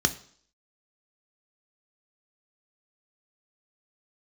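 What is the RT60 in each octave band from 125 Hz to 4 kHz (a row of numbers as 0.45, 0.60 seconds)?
0.50, 0.55, 0.55, 0.55, 0.55, 0.65 seconds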